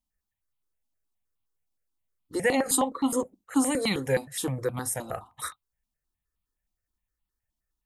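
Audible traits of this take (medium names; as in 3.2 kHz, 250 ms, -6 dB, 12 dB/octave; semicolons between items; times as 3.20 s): notches that jump at a steady rate 9.6 Hz 450–1700 Hz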